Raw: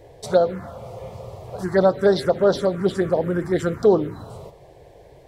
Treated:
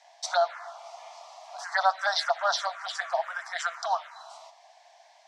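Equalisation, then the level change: steep high-pass 660 Hz 96 dB/octave; dynamic bell 1.3 kHz, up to +5 dB, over -38 dBFS, Q 0.71; resonant low-pass 5.9 kHz, resonance Q 2.5; -1.5 dB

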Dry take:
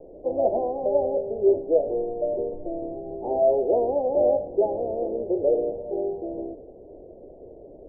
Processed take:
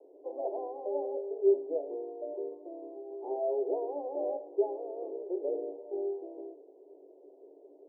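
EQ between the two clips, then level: rippled Chebyshev high-pass 280 Hz, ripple 9 dB; -5.0 dB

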